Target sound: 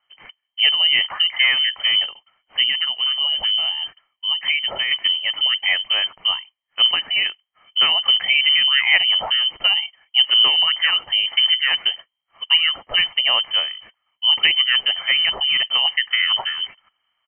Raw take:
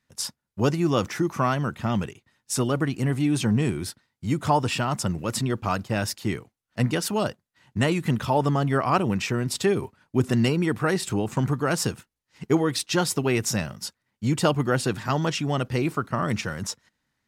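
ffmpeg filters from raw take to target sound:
-filter_complex "[0:a]aecho=1:1:0.9:0.52,asettb=1/sr,asplit=3[a][b][c];[a]atrim=end=2.694[d];[b]atrim=start=2.69:end=4.91,asetpts=PTS-STARTPTS,afade=t=in:d=0.004:c=qsin,afade=t=out:st=2.216:d=0.004:c=qsin,acompressor=threshold=-24dB:ratio=2.5[e];[c]atrim=start=4.906[f];[d][e]acrossfade=d=0.004:c1=hsin:c2=qsin[g];[g][f]acrossfade=d=0.004:c1=qsin:c2=hsin,lowpass=f=2.7k:t=q:w=0.5098,lowpass=f=2.7k:t=q:w=0.6013,lowpass=f=2.7k:t=q:w=0.9,lowpass=f=2.7k:t=q:w=2.563,afreqshift=-3200,volume=4.5dB"

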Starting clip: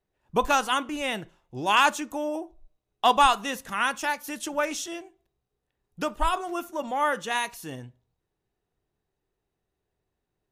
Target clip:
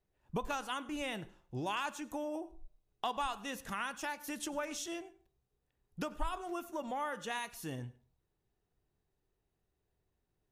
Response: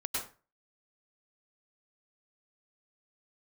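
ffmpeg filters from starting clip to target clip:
-filter_complex "[0:a]acompressor=threshold=-34dB:ratio=3,lowshelf=f=160:g=6,asplit=2[a][b];[1:a]atrim=start_sample=2205,asetrate=48510,aresample=44100[c];[b][c]afir=irnorm=-1:irlink=0,volume=-20.5dB[d];[a][d]amix=inputs=2:normalize=0,volume=-4.5dB"

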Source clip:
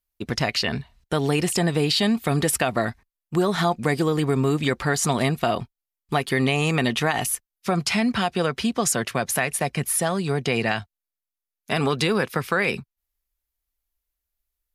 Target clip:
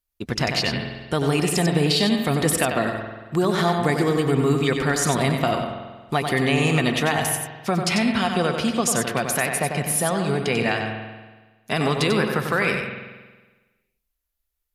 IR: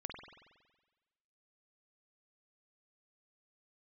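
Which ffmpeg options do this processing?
-filter_complex "[0:a]asplit=2[a][b];[1:a]atrim=start_sample=2205,adelay=94[c];[b][c]afir=irnorm=-1:irlink=0,volume=-2dB[d];[a][d]amix=inputs=2:normalize=0"

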